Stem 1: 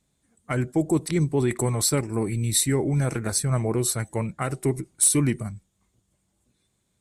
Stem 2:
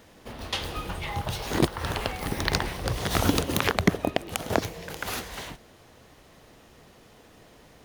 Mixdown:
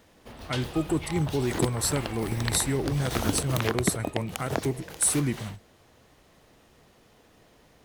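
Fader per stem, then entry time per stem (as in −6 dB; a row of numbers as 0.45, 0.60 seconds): −4.5, −5.0 decibels; 0.00, 0.00 seconds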